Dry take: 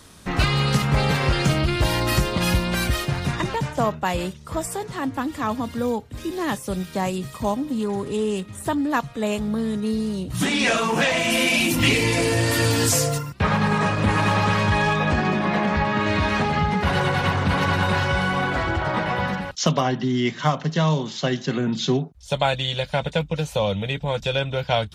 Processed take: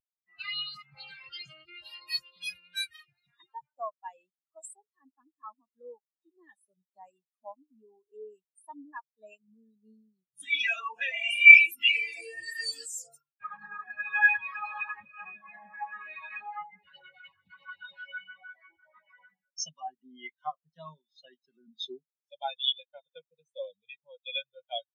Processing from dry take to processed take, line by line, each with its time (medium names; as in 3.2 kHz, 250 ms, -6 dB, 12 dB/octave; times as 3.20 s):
13.84–15.25 s: reverse
16.63–19.81 s: LFO notch sine 6.3 Hz 620–1500 Hz
whole clip: tilt EQ +4.5 dB/octave; loudness maximiser +4.5 dB; spectral contrast expander 4:1; trim -1 dB